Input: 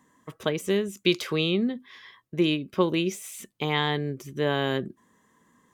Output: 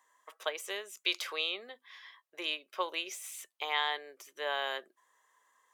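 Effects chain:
high-pass filter 610 Hz 24 dB per octave
level −4 dB

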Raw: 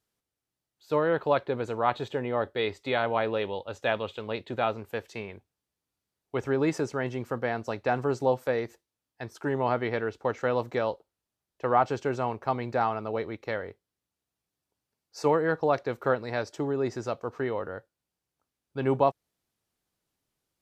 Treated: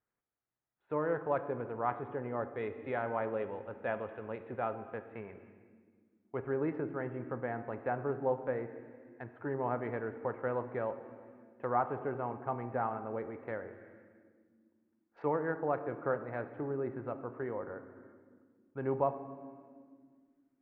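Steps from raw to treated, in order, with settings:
adaptive Wiener filter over 9 samples
low-pass filter 2,000 Hz 24 dB per octave
on a send at −9 dB: convolution reverb, pre-delay 4 ms
on the sum: one half of a high-frequency compander encoder only
level −8 dB

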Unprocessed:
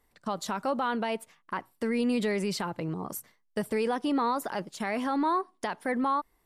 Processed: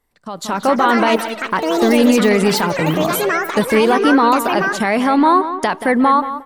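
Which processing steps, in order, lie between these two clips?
bucket-brigade delay 179 ms, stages 4,096, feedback 32%, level −11 dB
automatic gain control gain up to 15.5 dB
delay with pitch and tempo change per echo 338 ms, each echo +6 semitones, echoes 3, each echo −6 dB

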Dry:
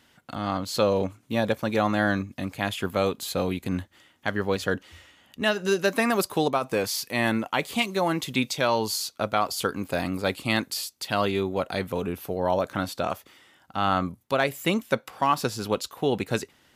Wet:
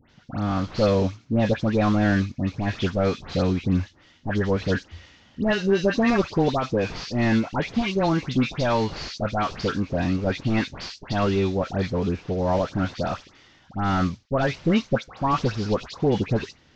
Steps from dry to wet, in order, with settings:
variable-slope delta modulation 32 kbit/s
low-shelf EQ 230 Hz +12 dB
all-pass dispersion highs, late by 101 ms, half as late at 1,900 Hz

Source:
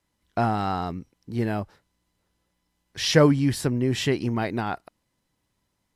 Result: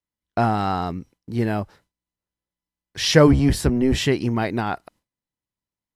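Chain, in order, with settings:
0:03.27–0:03.98: sub-octave generator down 1 octave, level 0 dB
noise gate with hold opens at −49 dBFS
level +3.5 dB

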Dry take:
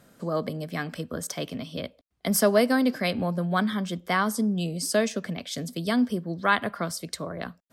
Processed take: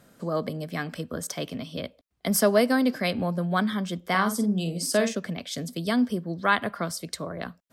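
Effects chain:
0:04.06–0:05.15: double-tracking delay 48 ms −8 dB

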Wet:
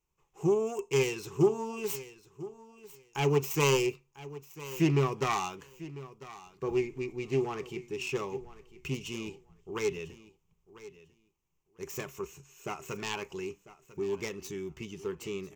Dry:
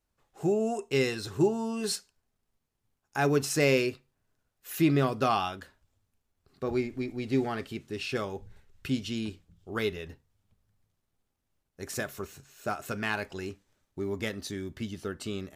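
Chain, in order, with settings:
phase distortion by the signal itself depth 0.26 ms
EQ curve with evenly spaced ripples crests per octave 0.74, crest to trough 12 dB
repeating echo 997 ms, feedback 16%, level −17 dB
level −4 dB

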